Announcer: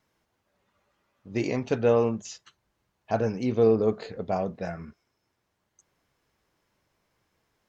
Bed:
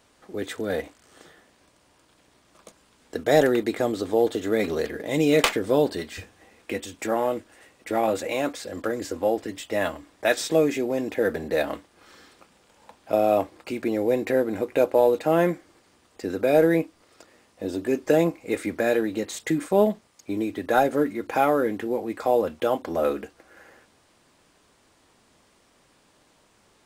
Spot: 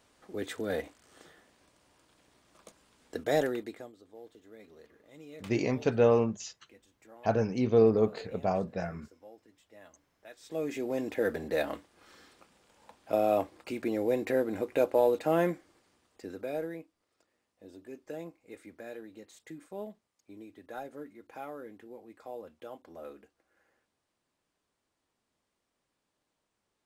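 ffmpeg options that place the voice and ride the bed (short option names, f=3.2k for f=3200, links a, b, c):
-filter_complex "[0:a]adelay=4150,volume=-1.5dB[a];[1:a]volume=17.5dB,afade=t=out:st=3.05:d=0.87:silence=0.0668344,afade=t=in:st=10.4:d=0.56:silence=0.0707946,afade=t=out:st=15.34:d=1.44:silence=0.16788[b];[a][b]amix=inputs=2:normalize=0"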